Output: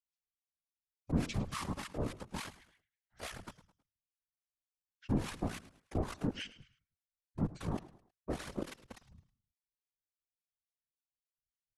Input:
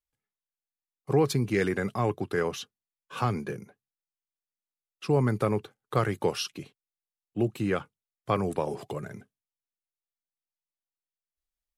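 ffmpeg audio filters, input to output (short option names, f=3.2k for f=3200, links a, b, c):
-filter_complex "[0:a]adynamicequalizer=threshold=0.00224:dfrequency=2000:dqfactor=4.6:tfrequency=2000:tqfactor=4.6:attack=5:release=100:ratio=0.375:range=3.5:mode=boostabove:tftype=bell,aeval=exprs='(tanh(7.94*val(0)+0.55)-tanh(0.55))/7.94':c=same,asplit=2[a][b];[b]adelay=150,highpass=300,lowpass=3.4k,asoftclip=type=hard:threshold=-24dB,volume=-16dB[c];[a][c]amix=inputs=2:normalize=0,acrossover=split=160|3200[d][e][f];[e]acrusher=bits=4:mix=0:aa=0.000001[g];[d][g][f]amix=inputs=3:normalize=0,acrossover=split=2000[h][i];[h]aeval=exprs='val(0)*(1-1/2+1/2*cos(2*PI*3.5*n/s))':c=same[j];[i]aeval=exprs='val(0)*(1-1/2-1/2*cos(2*PI*3.5*n/s))':c=same[k];[j][k]amix=inputs=2:normalize=0,asetrate=24046,aresample=44100,atempo=1.83401,asplit=2[l][m];[m]aecho=0:1:106|212|318:0.141|0.0523|0.0193[n];[l][n]amix=inputs=2:normalize=0,afftfilt=real='hypot(re,im)*cos(2*PI*random(0))':imag='hypot(re,im)*sin(2*PI*random(1))':win_size=512:overlap=0.75,volume=1dB"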